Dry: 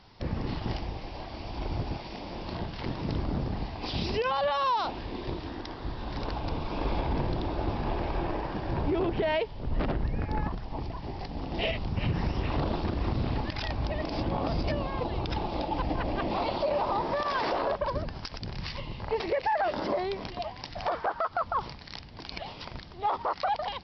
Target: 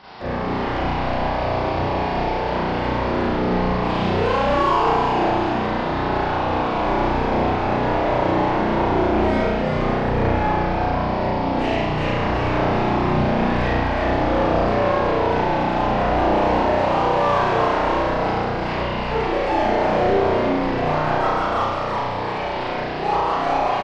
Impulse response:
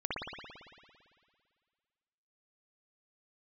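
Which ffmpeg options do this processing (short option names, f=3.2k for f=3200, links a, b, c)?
-filter_complex "[0:a]acrossover=split=2700[a][b];[b]acompressor=threshold=-56dB:ratio=4:attack=1:release=60[c];[a][c]amix=inputs=2:normalize=0,asplit=2[d][e];[e]highpass=f=720:p=1,volume=27dB,asoftclip=type=tanh:threshold=-17.5dB[f];[d][f]amix=inputs=2:normalize=0,lowpass=f=1.4k:p=1,volume=-6dB,asplit=9[g][h][i][j][k][l][m][n][o];[h]adelay=367,afreqshift=-120,volume=-3dB[p];[i]adelay=734,afreqshift=-240,volume=-7.9dB[q];[j]adelay=1101,afreqshift=-360,volume=-12.8dB[r];[k]adelay=1468,afreqshift=-480,volume=-17.6dB[s];[l]adelay=1835,afreqshift=-600,volume=-22.5dB[t];[m]adelay=2202,afreqshift=-720,volume=-27.4dB[u];[n]adelay=2569,afreqshift=-840,volume=-32.3dB[v];[o]adelay=2936,afreqshift=-960,volume=-37.2dB[w];[g][p][q][r][s][t][u][v][w]amix=inputs=9:normalize=0[x];[1:a]atrim=start_sample=2205,asetrate=74970,aresample=44100[y];[x][y]afir=irnorm=-1:irlink=0,aresample=22050,aresample=44100,volume=2dB"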